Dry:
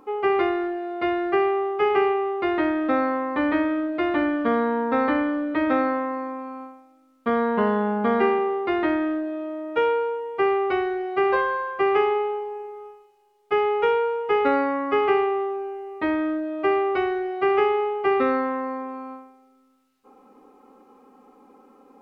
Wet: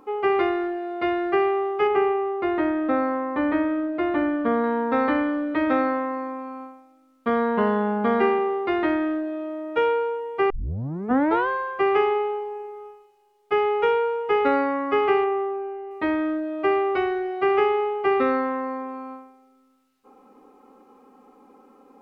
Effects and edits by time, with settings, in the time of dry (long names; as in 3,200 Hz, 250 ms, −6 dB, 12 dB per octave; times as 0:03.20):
0:01.87–0:04.64: high-shelf EQ 2,700 Hz −10 dB
0:10.50: tape start 0.98 s
0:15.24–0:15.91: low-pass filter 2,700 Hz